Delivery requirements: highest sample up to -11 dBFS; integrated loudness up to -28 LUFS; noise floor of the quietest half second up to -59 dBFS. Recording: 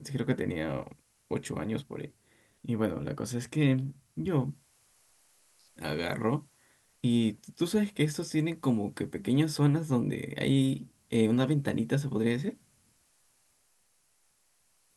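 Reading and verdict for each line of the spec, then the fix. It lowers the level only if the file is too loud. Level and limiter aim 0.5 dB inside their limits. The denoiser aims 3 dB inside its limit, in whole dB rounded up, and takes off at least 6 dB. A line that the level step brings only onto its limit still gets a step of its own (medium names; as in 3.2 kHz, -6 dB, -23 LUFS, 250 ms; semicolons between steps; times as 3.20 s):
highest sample -13.5 dBFS: pass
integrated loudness -30.5 LUFS: pass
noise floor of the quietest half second -70 dBFS: pass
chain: none needed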